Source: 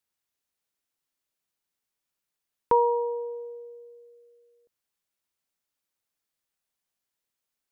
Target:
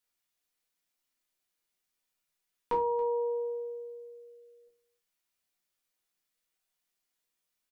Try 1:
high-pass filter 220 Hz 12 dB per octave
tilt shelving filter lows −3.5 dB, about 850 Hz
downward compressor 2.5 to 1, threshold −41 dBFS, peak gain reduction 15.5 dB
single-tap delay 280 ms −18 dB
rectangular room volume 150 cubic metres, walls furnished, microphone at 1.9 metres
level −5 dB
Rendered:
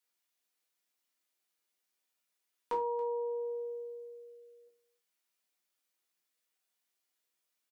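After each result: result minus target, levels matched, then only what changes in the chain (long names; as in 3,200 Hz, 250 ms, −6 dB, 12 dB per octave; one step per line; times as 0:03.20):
downward compressor: peak gain reduction +4 dB; 250 Hz band −2.0 dB
change: downward compressor 2.5 to 1, threshold −34 dBFS, peak gain reduction 11 dB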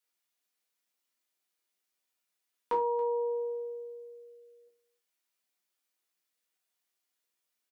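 250 Hz band −2.5 dB
remove: high-pass filter 220 Hz 12 dB per octave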